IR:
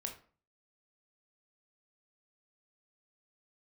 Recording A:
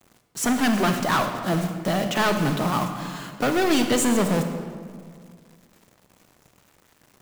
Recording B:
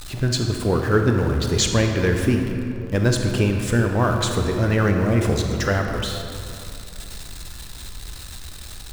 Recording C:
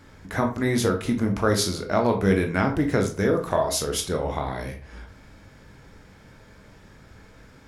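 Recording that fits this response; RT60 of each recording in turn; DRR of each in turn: C; 2.0 s, 2.8 s, 0.40 s; 6.0 dB, 3.0 dB, 2.5 dB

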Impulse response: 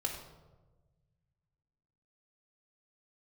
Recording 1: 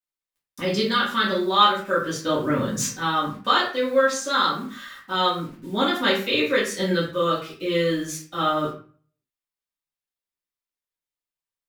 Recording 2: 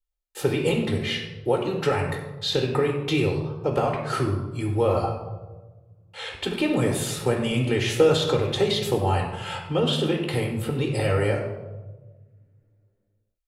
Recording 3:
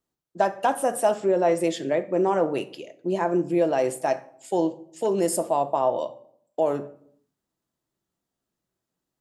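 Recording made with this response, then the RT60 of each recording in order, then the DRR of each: 2; 0.40 s, 1.3 s, 0.65 s; -8.0 dB, 0.5 dB, 9.0 dB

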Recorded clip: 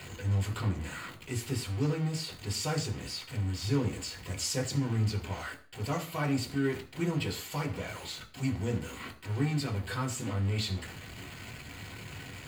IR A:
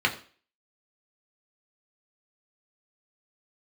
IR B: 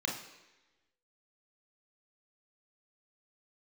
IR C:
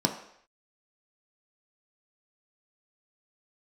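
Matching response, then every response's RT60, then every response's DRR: A; 0.40 s, 1.1 s, no single decay rate; 0.0 dB, -0.5 dB, 2.5 dB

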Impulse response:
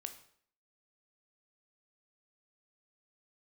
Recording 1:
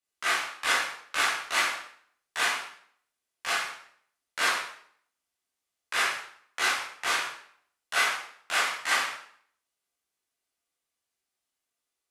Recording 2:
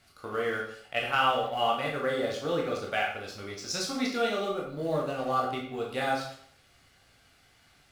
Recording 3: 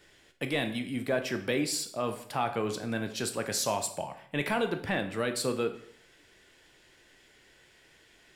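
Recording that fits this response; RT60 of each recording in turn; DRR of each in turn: 3; 0.60 s, 0.60 s, 0.60 s; -8.5 dB, -2.5 dB, 7.0 dB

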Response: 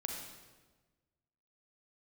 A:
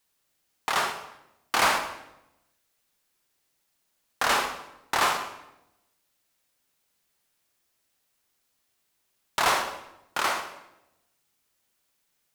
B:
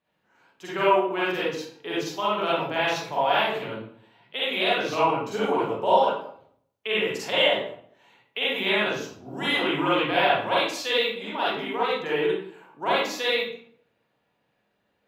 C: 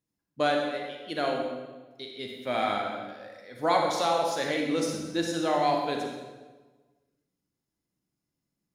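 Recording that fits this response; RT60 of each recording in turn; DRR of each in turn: C; 0.85 s, 0.60 s, 1.3 s; 6.5 dB, -8.5 dB, 1.0 dB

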